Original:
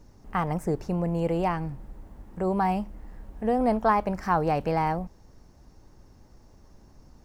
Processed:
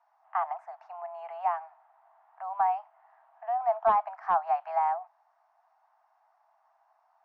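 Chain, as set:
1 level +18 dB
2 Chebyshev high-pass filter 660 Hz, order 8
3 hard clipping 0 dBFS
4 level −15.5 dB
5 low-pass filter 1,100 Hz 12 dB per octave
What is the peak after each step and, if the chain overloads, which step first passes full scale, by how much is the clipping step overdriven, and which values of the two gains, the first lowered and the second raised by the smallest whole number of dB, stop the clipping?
+7.5, +6.0, 0.0, −15.5, −15.0 dBFS
step 1, 6.0 dB
step 1 +12 dB, step 4 −9.5 dB

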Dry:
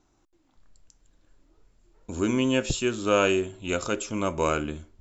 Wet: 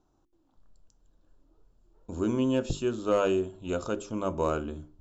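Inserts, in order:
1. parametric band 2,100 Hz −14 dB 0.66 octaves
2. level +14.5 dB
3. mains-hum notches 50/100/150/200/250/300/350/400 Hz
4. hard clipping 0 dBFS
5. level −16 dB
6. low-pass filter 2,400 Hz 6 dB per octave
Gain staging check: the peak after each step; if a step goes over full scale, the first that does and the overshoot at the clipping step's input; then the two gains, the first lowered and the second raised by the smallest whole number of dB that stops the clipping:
−10.5, +4.0, +4.0, 0.0, −16.0, −16.0 dBFS
step 2, 4.0 dB
step 2 +10.5 dB, step 5 −12 dB

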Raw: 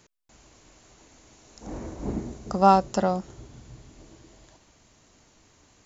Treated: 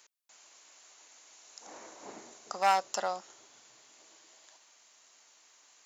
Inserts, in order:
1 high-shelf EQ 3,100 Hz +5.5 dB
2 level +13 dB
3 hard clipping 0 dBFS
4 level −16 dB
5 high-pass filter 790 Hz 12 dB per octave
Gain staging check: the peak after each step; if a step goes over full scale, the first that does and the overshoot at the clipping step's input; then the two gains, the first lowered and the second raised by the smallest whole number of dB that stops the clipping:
−3.5, +9.5, 0.0, −16.0, −13.0 dBFS
step 2, 9.5 dB
step 2 +3 dB, step 4 −6 dB

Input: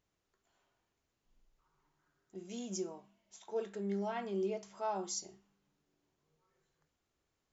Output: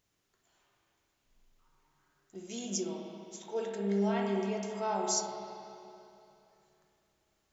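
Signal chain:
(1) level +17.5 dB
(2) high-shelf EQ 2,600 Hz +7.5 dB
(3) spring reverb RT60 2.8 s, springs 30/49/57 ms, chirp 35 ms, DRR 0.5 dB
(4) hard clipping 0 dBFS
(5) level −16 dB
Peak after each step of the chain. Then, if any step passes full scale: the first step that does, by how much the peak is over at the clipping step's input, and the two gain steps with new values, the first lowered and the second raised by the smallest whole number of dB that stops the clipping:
−9.0, −3.0, −2.0, −2.0, −18.0 dBFS
no step passes full scale

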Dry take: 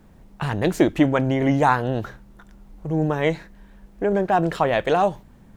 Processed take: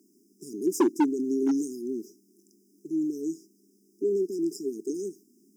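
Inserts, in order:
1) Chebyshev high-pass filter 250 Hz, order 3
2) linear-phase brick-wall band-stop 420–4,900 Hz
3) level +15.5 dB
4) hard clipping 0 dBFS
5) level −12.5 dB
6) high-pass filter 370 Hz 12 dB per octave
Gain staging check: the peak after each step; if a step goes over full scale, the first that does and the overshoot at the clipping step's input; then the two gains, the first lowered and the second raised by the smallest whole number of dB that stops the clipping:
−5.5, −8.5, +7.0, 0.0, −12.5, −12.0 dBFS
step 3, 7.0 dB
step 3 +8.5 dB, step 5 −5.5 dB

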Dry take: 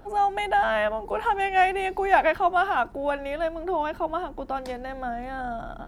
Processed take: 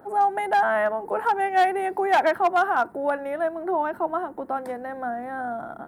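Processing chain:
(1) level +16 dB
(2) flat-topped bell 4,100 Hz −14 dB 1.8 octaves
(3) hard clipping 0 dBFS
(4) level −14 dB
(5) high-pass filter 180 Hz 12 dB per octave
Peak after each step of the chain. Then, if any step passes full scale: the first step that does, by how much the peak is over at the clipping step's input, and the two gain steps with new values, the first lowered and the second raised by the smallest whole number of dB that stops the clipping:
+10.0, +9.5, 0.0, −14.0, −10.5 dBFS
step 1, 9.5 dB
step 1 +6 dB, step 4 −4 dB

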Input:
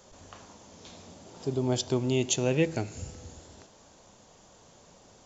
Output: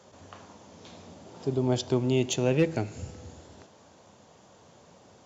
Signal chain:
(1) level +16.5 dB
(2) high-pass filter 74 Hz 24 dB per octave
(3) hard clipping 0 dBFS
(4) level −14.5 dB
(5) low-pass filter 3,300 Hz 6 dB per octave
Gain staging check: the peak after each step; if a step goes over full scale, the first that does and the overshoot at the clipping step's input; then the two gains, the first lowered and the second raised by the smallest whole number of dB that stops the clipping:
+4.5, +4.5, 0.0, −14.5, −14.5 dBFS
step 1, 4.5 dB
step 1 +11.5 dB, step 4 −9.5 dB

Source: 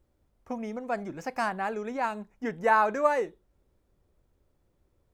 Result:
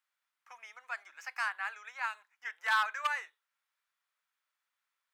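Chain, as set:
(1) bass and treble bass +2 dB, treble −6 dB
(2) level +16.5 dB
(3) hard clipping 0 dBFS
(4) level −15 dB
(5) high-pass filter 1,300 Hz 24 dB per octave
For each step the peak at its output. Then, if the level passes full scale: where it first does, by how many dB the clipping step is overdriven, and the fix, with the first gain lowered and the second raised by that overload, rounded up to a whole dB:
−10.5, +6.0, 0.0, −15.0, −17.0 dBFS
step 2, 6.0 dB
step 2 +10.5 dB, step 4 −9 dB

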